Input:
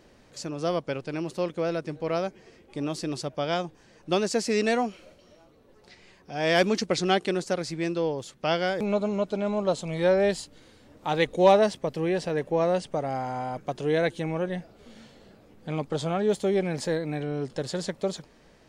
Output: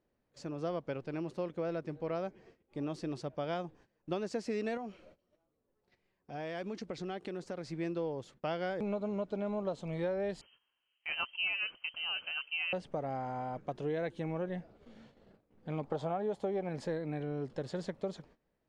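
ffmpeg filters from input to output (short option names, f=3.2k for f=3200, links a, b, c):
-filter_complex "[0:a]asettb=1/sr,asplit=3[a][b][c];[a]atrim=end=4.774[d];[b]atrim=start=4.77:end=7.68,asetpts=PTS-STARTPTS,afade=t=in:d=0.004:c=qsin,afade=t=out:st=2.906:d=0.004:c=qsin,acompressor=threshold=-30dB:ratio=5:attack=3.2:release=140:knee=1:detection=peak[e];[c]atrim=start=7.676[f];[d][e]acrossfade=d=0.004:c1=hsin:c2=qsin[g];[g][f]acrossfade=d=0.004:c1=qsin:c2=hsin,asettb=1/sr,asplit=3[h][i][j];[h]atrim=end=10.414[k];[i]atrim=start=10.41:end=12.73,asetpts=PTS-STARTPTS,afade=t=in:d=0.004:c=qsin,afade=t=out:st=2.316:d=0.004:c=qsin,lowpass=f=2.7k:t=q:w=0.5098,lowpass=f=2.7k:t=q:w=0.6013,lowpass=f=2.7k:t=q:w=0.9,lowpass=f=2.7k:t=q:w=2.563,afreqshift=-3200[l];[j]atrim=start=12.726[m];[k][l]acrossfade=d=0.004:c1=hsin:c2=qsin[n];[n][m]acrossfade=d=0.004:c1=qsin:c2=hsin,asettb=1/sr,asplit=3[o][p][q];[o]atrim=end=15.834[r];[p]atrim=start=15.83:end=16.69,asetpts=PTS-STARTPTS,afade=t=in:d=0.004:c=qsin,afade=t=out:st=0.856:d=0.004:c=qsin,equalizer=f=790:t=o:w=1.2:g=10[s];[q]atrim=start=16.686[t];[r][s]acrossfade=d=0.004:c1=hsin:c2=qsin[u];[u][t]acrossfade=d=0.004:c1=qsin:c2=hsin,lowpass=f=1.8k:p=1,agate=range=-17dB:threshold=-52dB:ratio=16:detection=peak,acompressor=threshold=-25dB:ratio=10,volume=-6dB"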